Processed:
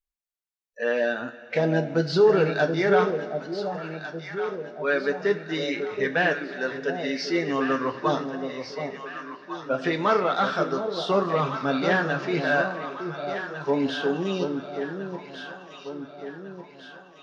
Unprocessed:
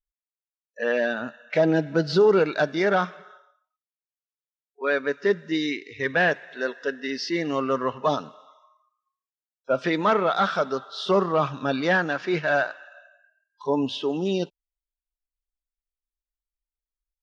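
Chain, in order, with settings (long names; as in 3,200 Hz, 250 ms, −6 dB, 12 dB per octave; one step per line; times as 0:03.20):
delay that swaps between a low-pass and a high-pass 726 ms, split 800 Hz, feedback 69%, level −6 dB
coupled-rooms reverb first 0.23 s, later 4 s, from −22 dB, DRR 5.5 dB
level −2 dB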